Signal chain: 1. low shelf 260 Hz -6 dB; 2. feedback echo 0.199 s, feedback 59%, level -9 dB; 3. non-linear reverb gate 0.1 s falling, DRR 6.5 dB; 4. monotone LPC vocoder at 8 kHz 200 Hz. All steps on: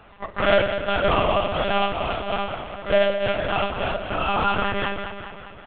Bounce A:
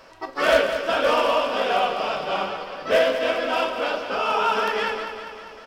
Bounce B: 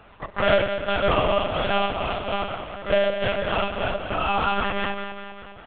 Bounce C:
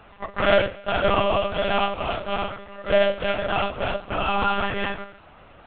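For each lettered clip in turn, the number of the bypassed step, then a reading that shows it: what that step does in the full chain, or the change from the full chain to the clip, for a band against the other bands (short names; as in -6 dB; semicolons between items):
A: 4, 125 Hz band -16.0 dB; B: 3, loudness change -1.0 LU; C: 2, momentary loudness spread change -2 LU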